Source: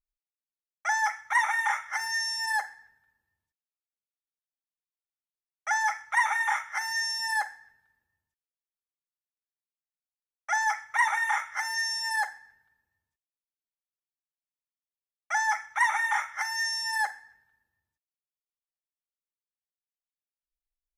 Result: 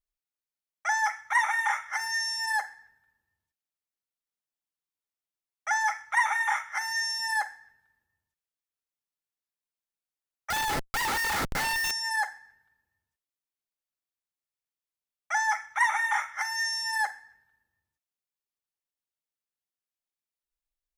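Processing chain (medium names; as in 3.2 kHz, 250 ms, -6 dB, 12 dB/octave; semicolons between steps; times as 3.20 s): 10.50–11.91 s: Schmitt trigger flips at -36 dBFS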